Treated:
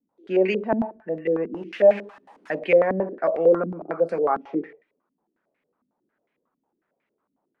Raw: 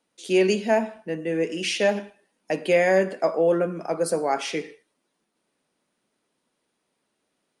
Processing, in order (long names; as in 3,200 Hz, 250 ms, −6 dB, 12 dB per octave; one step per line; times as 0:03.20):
0:01.54–0:02.59: spike at every zero crossing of −22.5 dBFS
low-pass on a step sequencer 11 Hz 250–2,200 Hz
level −4 dB